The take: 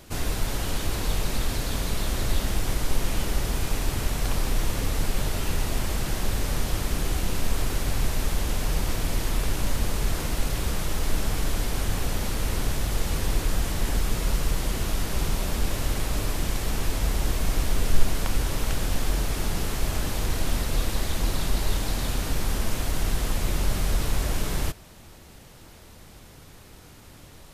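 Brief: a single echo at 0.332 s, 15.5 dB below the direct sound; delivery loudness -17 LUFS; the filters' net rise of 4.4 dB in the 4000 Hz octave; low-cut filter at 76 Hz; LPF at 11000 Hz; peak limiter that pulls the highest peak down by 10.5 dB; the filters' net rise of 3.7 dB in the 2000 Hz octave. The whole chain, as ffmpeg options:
-af "highpass=76,lowpass=11k,equalizer=f=2k:t=o:g=3.5,equalizer=f=4k:t=o:g=4.5,alimiter=limit=-23dB:level=0:latency=1,aecho=1:1:332:0.168,volume=15dB"

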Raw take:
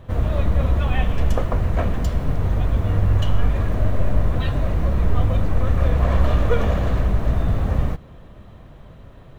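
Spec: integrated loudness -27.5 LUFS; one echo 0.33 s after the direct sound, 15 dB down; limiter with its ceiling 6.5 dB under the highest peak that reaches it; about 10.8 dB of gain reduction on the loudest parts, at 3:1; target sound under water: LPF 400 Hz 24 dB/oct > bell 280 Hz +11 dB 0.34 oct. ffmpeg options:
-af "acompressor=threshold=-27dB:ratio=3,alimiter=limit=-22.5dB:level=0:latency=1,lowpass=f=400:w=0.5412,lowpass=f=400:w=1.3066,equalizer=f=280:t=o:w=0.34:g=11,aecho=1:1:330:0.178,volume=6dB"

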